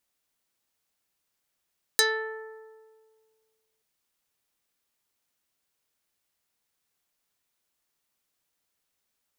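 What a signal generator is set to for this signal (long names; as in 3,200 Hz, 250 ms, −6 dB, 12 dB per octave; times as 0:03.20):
Karplus-Strong string A4, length 1.83 s, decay 1.85 s, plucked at 0.39, dark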